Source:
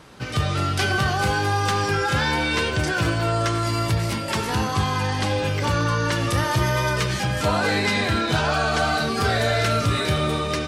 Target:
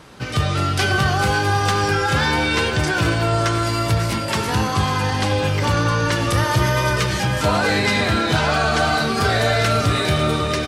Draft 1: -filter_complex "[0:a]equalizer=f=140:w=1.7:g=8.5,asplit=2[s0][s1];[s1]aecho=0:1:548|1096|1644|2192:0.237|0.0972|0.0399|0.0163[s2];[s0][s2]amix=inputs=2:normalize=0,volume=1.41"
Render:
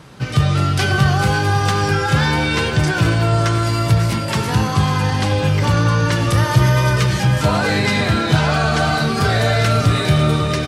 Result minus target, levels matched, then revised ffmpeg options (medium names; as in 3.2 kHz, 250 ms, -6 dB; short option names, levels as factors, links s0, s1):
125 Hz band +3.5 dB
-filter_complex "[0:a]asplit=2[s0][s1];[s1]aecho=0:1:548|1096|1644|2192:0.237|0.0972|0.0399|0.0163[s2];[s0][s2]amix=inputs=2:normalize=0,volume=1.41"